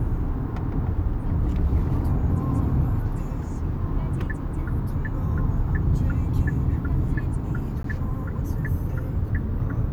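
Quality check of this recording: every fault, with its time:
7.83–7.84 s: dropout 13 ms

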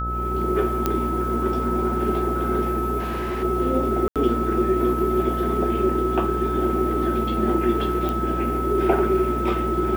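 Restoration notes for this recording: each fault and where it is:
buzz 60 Hz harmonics 15 -28 dBFS
whine 1.3 kHz -26 dBFS
0.86 s: pop -7 dBFS
2.99–3.44 s: clipped -23.5 dBFS
4.08–4.16 s: dropout 77 ms
8.09 s: pop

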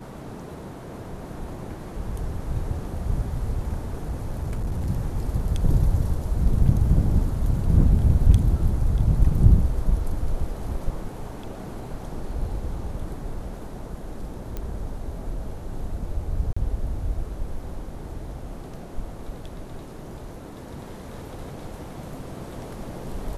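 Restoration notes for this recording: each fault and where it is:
3.94–4.90 s: clipped -22.5 dBFS
14.57 s: pop -18 dBFS
16.53–16.57 s: dropout 35 ms

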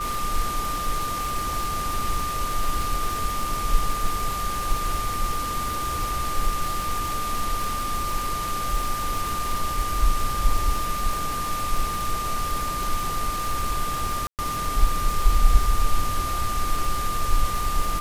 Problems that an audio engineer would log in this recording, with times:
crackle 94 per s -26 dBFS
whine 1.2 kHz -27 dBFS
14.27–14.39 s: dropout 118 ms

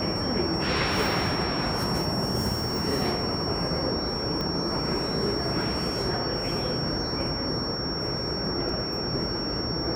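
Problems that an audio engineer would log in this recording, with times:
whine 5.5 kHz -31 dBFS
4.41 s: pop -18 dBFS
8.69 s: dropout 2.8 ms

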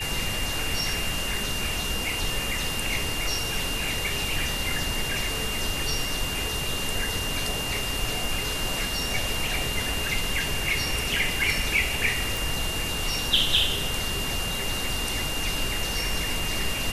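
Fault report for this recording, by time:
whine 2.8 kHz -31 dBFS
12.37 s: pop

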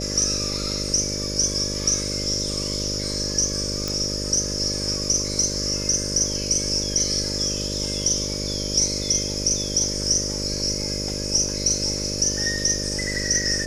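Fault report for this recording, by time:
buzz 50 Hz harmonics 12 -30 dBFS
3.88 s: pop -11 dBFS

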